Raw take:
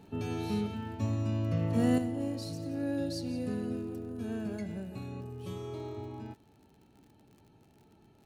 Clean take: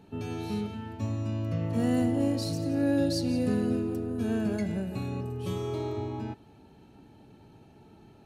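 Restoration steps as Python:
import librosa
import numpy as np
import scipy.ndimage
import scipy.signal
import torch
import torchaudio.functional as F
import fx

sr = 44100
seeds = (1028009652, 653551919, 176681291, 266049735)

y = fx.fix_declick_ar(x, sr, threshold=6.5)
y = fx.fix_level(y, sr, at_s=1.98, step_db=7.5)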